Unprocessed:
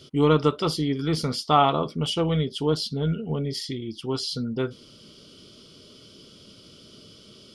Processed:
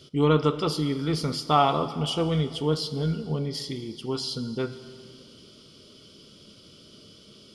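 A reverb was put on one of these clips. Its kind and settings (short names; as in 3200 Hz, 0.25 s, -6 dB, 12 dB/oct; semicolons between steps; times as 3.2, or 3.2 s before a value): plate-style reverb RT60 2.3 s, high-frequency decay 1×, DRR 11 dB; gain -2 dB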